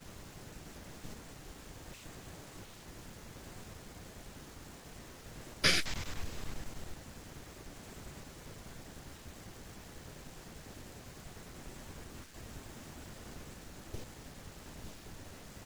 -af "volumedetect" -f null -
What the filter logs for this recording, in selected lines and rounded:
mean_volume: -43.3 dB
max_volume: -12.9 dB